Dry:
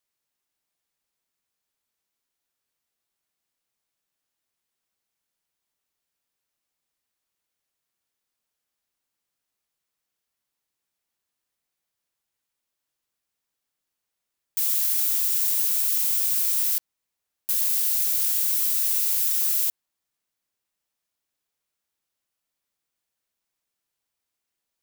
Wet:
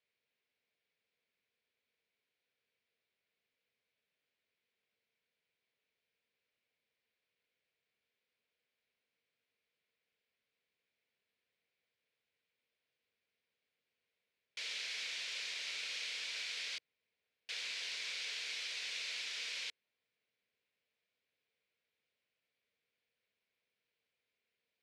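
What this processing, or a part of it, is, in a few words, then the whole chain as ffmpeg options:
guitar cabinet: -af "highpass=100,equalizer=f=160:t=q:w=4:g=-3,equalizer=f=320:t=q:w=4:g=-7,equalizer=f=460:t=q:w=4:g=8,equalizer=f=840:t=q:w=4:g=-9,equalizer=f=1.2k:t=q:w=4:g=-8,equalizer=f=2.3k:t=q:w=4:g=7,lowpass=f=4.2k:w=0.5412,lowpass=f=4.2k:w=1.3066"

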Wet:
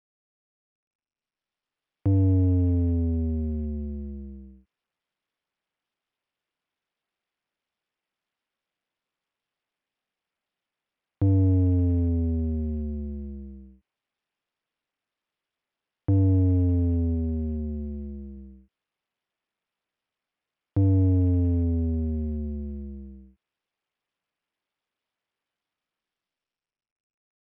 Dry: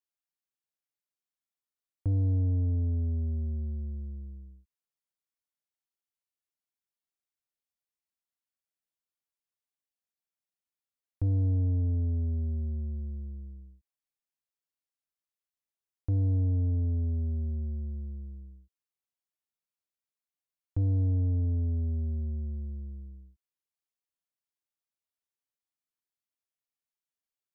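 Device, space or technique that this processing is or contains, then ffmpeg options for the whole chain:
Bluetooth headset: -filter_complex "[0:a]asettb=1/sr,asplit=3[a][b][c];[a]atrim=end=17.144[d];[b]atrim=start=17.14:end=18.37,asetpts=PTS-STARTPTS,afade=t=in:d=0.004:c=qsin,afade=t=out:st=1.226:d=0.004:c=qsin,lowshelf=f=77:g=-2.5[e];[c]atrim=start=18.366[f];[d][e]acrossfade=d=0.004:c1=hsin:c2=qsin[g];[g][f]acrossfade=d=0.004:c1=qsin:c2=hsin,highpass=140,dynaudnorm=f=300:g=9:m=15.5dB,aresample=8000,aresample=44100,volume=-3dB" -ar 44100 -c:a sbc -b:a 64k

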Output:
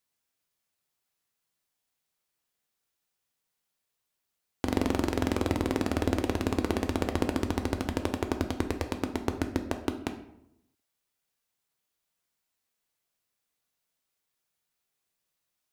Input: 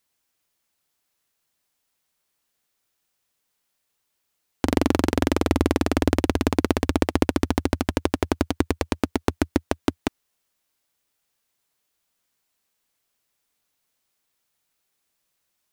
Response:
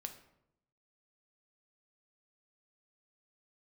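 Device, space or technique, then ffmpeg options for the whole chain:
bathroom: -filter_complex "[1:a]atrim=start_sample=2205[a];[0:a][a]afir=irnorm=-1:irlink=0,volume=-3.5dB"

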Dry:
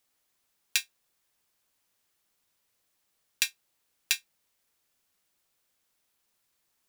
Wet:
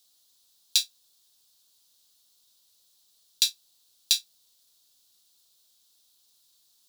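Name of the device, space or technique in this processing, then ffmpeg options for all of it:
over-bright horn tweeter: -af "highshelf=f=2.9k:t=q:w=3:g=10,alimiter=limit=-2.5dB:level=0:latency=1:release=63"

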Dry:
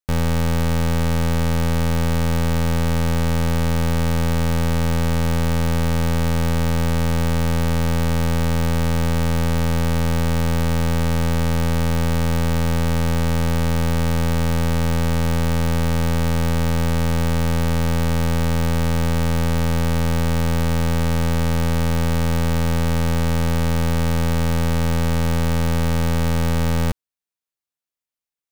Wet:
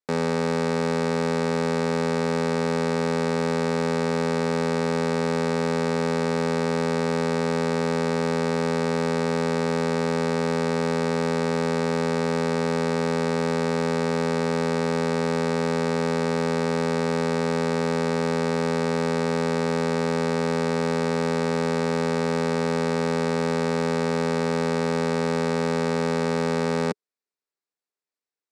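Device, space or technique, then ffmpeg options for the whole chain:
television speaker: -af "highpass=f=190:w=0.5412,highpass=f=190:w=1.3066,equalizer=f=420:t=q:w=4:g=8,equalizer=f=3.1k:t=q:w=4:g=-9,equalizer=f=6.4k:t=q:w=4:g=-6,lowpass=f=7.8k:w=0.5412,lowpass=f=7.8k:w=1.3066"

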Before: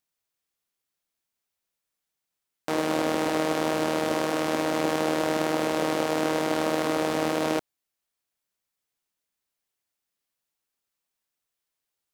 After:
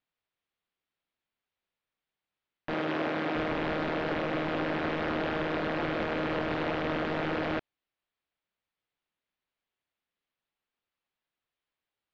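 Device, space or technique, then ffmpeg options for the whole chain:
synthesiser wavefolder: -filter_complex "[0:a]aeval=exprs='0.0668*(abs(mod(val(0)/0.0668+3,4)-2)-1)':c=same,lowpass=f=3.7k:w=0.5412,lowpass=f=3.7k:w=1.3066,asettb=1/sr,asplit=3[a][b][c];[a]atrim=end=2.744[d];[b]atrim=start=2.74:end=3.35,asetpts=PTS-STARTPTS,afade=t=in:d=0.004:c=qsin,afade=t=out:st=0.606:d=0.004:c=qsin,highpass=150[e];[c]atrim=start=3.346[f];[d][e]acrossfade=d=0.004:c1=hsin:c2=qsin[g];[g][f]acrossfade=d=0.004:c1=qsin:c2=hsin"

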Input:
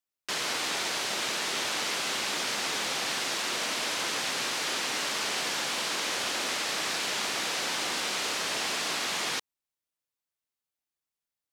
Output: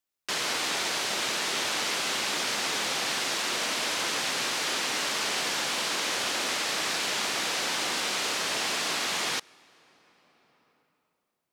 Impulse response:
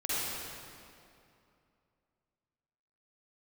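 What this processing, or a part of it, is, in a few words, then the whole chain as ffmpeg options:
ducked reverb: -filter_complex "[0:a]asplit=3[a][b][c];[1:a]atrim=start_sample=2205[d];[b][d]afir=irnorm=-1:irlink=0[e];[c]apad=whole_len=508363[f];[e][f]sidechaincompress=threshold=-52dB:ratio=6:attack=32:release=822,volume=-12.5dB[g];[a][g]amix=inputs=2:normalize=0,volume=1.5dB"

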